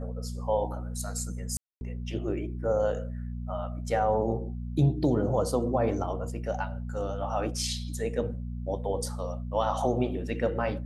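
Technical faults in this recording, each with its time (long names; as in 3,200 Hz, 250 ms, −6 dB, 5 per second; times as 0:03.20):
mains hum 60 Hz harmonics 4 −35 dBFS
0:01.57–0:01.81: drop-out 241 ms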